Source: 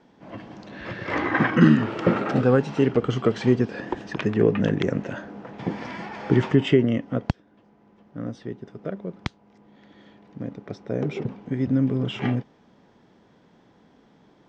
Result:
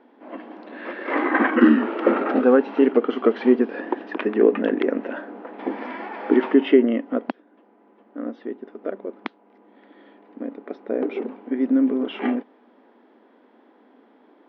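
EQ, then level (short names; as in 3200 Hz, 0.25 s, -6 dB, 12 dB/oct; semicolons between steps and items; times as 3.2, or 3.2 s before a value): Gaussian blur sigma 2.2 samples; brick-wall FIR high-pass 220 Hz; air absorption 170 m; +4.5 dB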